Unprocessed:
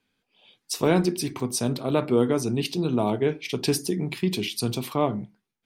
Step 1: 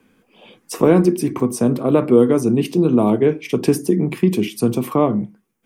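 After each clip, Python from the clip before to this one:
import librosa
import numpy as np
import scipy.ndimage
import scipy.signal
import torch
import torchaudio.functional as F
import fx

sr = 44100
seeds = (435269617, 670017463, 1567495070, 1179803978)

y = fx.peak_eq(x, sr, hz=4100.0, db=-12.5, octaves=0.83)
y = fx.small_body(y, sr, hz=(220.0, 330.0, 480.0, 1100.0), ring_ms=30, db=7)
y = fx.band_squash(y, sr, depth_pct=40)
y = y * librosa.db_to_amplitude(3.5)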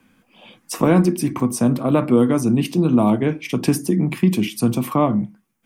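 y = fx.peak_eq(x, sr, hz=420.0, db=-11.0, octaves=0.54)
y = y * librosa.db_to_amplitude(1.5)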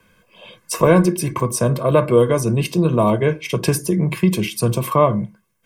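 y = x + 0.83 * np.pad(x, (int(1.9 * sr / 1000.0), 0))[:len(x)]
y = y * librosa.db_to_amplitude(1.5)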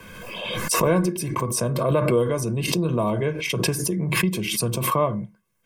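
y = fx.pre_swell(x, sr, db_per_s=32.0)
y = y * librosa.db_to_amplitude(-7.5)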